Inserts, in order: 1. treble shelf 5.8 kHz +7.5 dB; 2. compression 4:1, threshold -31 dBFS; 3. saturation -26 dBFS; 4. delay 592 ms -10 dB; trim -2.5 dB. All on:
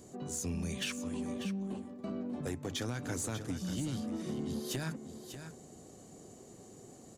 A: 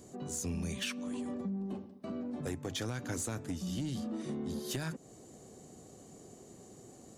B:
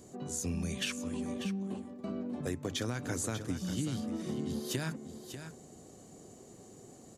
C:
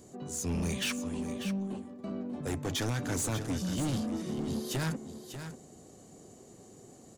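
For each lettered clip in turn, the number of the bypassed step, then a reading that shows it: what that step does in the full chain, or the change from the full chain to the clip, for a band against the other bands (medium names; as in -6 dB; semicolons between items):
4, crest factor change -1.5 dB; 3, distortion -18 dB; 2, crest factor change -3.0 dB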